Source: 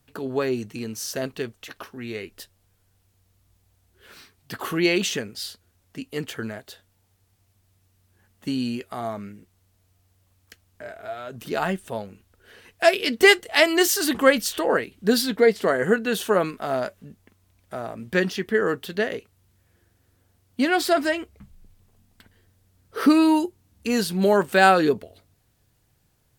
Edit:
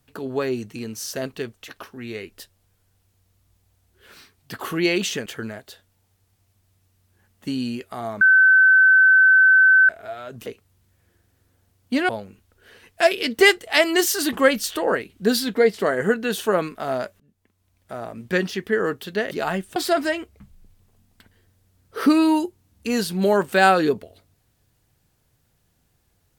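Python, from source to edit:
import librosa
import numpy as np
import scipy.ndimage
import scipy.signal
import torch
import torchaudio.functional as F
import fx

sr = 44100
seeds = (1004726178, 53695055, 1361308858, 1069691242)

y = fx.edit(x, sr, fx.cut(start_s=5.26, length_s=1.0),
    fx.bleep(start_s=9.21, length_s=1.68, hz=1530.0, db=-10.0),
    fx.swap(start_s=11.46, length_s=0.45, other_s=19.13, other_length_s=1.63),
    fx.fade_in_from(start_s=17.02, length_s=0.85, floor_db=-24.0), tone=tone)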